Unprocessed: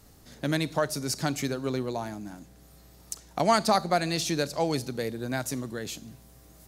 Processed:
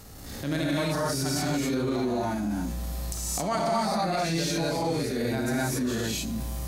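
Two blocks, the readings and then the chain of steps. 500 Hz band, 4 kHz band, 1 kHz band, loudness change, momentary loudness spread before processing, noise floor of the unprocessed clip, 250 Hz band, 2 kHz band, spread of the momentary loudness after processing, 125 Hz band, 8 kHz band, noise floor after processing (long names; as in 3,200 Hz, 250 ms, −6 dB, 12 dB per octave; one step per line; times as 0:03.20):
+0.5 dB, +1.0 dB, −0.5 dB, +0.5 dB, 16 LU, −54 dBFS, +4.0 dB, +1.0 dB, 6 LU, +3.5 dB, +3.0 dB, −38 dBFS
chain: reverb whose tail is shaped and stops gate 300 ms rising, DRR −7 dB
downward compressor 6 to 1, threshold −35 dBFS, peak gain reduction 23 dB
harmonic and percussive parts rebalanced harmonic +7 dB
transient designer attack −7 dB, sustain +3 dB
level +4 dB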